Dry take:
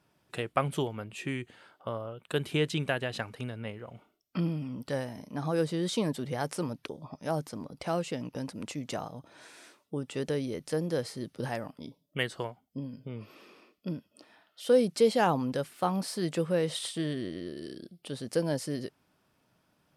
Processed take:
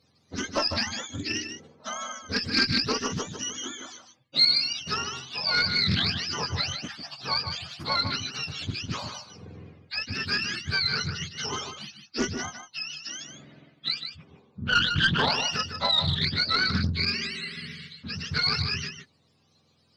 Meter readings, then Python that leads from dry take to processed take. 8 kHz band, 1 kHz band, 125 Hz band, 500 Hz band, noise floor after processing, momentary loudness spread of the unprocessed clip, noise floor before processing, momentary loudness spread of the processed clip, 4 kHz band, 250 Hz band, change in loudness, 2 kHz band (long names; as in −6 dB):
+8.5 dB, +3.5 dB, +2.0 dB, −8.0 dB, −66 dBFS, 14 LU, −73 dBFS, 15 LU, +16.5 dB, −2.0 dB, +6.0 dB, +11.5 dB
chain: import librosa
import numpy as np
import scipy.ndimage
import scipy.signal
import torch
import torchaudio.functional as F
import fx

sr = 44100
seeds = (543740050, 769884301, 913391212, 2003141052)

y = fx.octave_mirror(x, sr, pivot_hz=850.0)
y = fx.tube_stage(y, sr, drive_db=19.0, bias=0.4)
y = fx.peak_eq(y, sr, hz=4400.0, db=12.0, octaves=0.99)
y = y + 10.0 ** (-8.0 / 20.0) * np.pad(y, (int(152 * sr / 1000.0), 0))[:len(y)]
y = fx.doppler_dist(y, sr, depth_ms=0.37)
y = y * 10.0 ** (4.0 / 20.0)